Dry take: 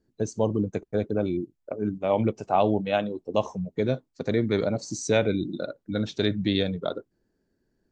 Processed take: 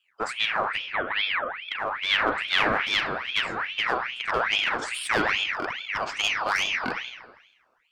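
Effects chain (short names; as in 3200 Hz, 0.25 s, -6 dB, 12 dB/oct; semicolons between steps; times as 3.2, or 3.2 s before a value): one-sided clip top -29 dBFS; 0.92–1.55 brick-wall FIR band-pass 180–2600 Hz; reverb RT60 1.1 s, pre-delay 32 ms, DRR 2.5 dB; ring modulator with a swept carrier 1900 Hz, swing 55%, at 2.4 Hz; gain +3 dB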